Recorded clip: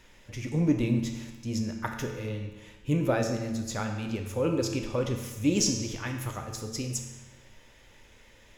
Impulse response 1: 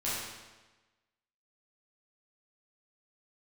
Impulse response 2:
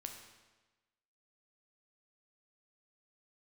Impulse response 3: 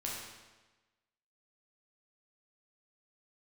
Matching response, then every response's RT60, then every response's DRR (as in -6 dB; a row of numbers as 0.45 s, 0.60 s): 2; 1.2 s, 1.2 s, 1.2 s; -9.5 dB, 3.5 dB, -4.5 dB